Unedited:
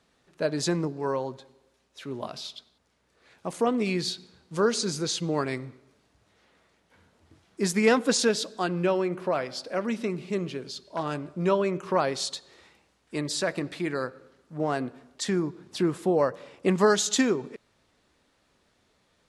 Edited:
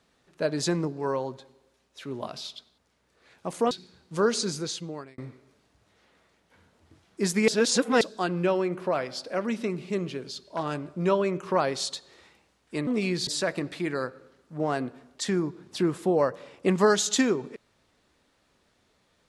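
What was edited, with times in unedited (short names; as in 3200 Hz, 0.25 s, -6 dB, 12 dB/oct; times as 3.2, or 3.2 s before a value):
3.71–4.11 move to 13.27
4.82–5.58 fade out
7.88–8.41 reverse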